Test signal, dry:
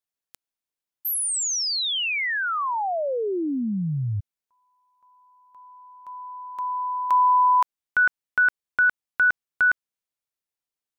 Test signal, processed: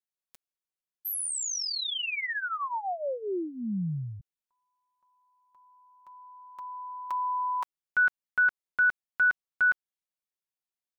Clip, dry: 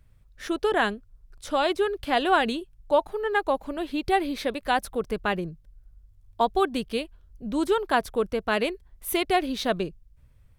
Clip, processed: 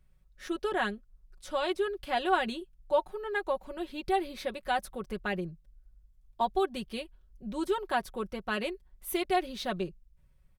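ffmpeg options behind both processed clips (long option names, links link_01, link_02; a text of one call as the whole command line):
ffmpeg -i in.wav -af "aecho=1:1:5.4:0.69,volume=-8.5dB" out.wav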